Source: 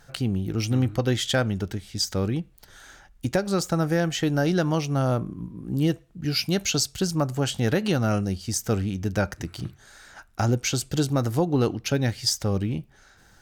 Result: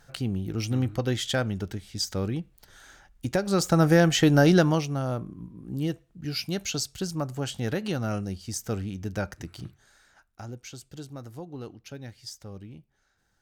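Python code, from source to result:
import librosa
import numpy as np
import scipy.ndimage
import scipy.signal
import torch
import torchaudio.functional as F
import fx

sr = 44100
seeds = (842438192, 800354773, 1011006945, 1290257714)

y = fx.gain(x, sr, db=fx.line((3.26, -3.5), (3.86, 4.5), (4.56, 4.5), (5.0, -6.0), (9.59, -6.0), (10.42, -17.0)))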